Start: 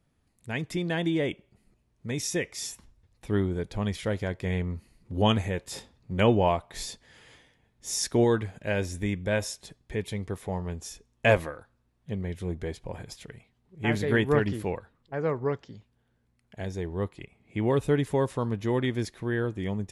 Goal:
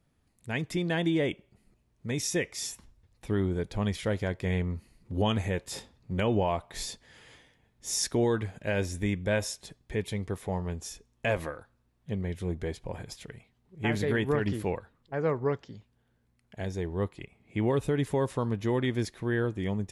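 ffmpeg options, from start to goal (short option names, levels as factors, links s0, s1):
-af "alimiter=limit=0.133:level=0:latency=1:release=94"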